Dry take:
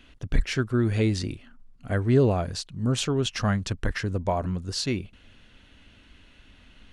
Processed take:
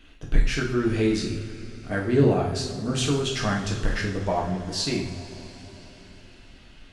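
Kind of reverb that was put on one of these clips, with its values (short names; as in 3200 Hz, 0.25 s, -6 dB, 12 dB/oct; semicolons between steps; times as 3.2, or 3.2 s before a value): two-slope reverb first 0.55 s, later 4.8 s, from -18 dB, DRR -2.5 dB; gain -2 dB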